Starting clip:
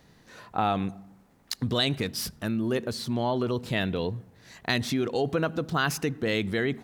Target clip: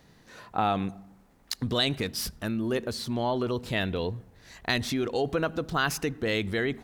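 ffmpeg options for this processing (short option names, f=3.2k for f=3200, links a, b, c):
-af "asubboost=boost=6.5:cutoff=54"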